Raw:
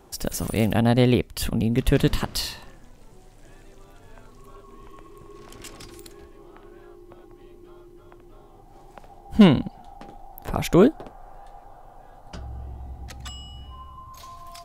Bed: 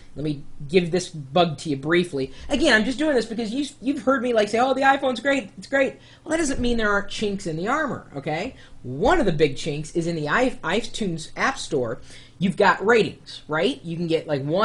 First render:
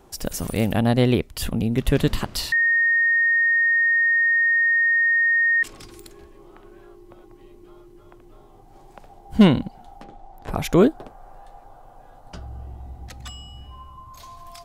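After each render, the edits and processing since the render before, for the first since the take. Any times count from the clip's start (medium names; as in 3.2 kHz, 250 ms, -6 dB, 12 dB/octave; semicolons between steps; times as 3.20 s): 2.52–5.63 s: bleep 1.85 kHz -15.5 dBFS; 10.04–10.49 s: distance through air 68 m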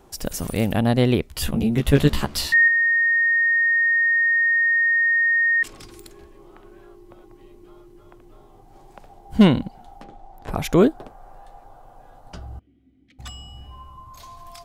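1.29–2.68 s: doubling 14 ms -2 dB; 12.59–13.19 s: vowel filter i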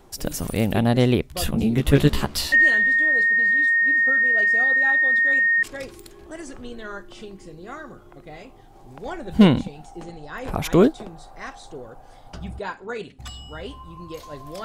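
add bed -14.5 dB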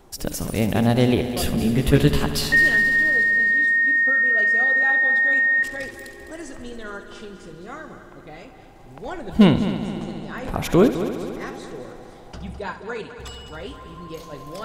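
multi-head delay 69 ms, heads first and third, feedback 72%, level -13 dB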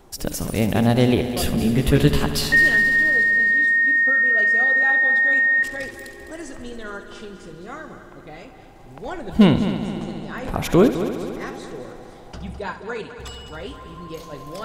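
trim +1 dB; peak limiter -3 dBFS, peak gain reduction 2.5 dB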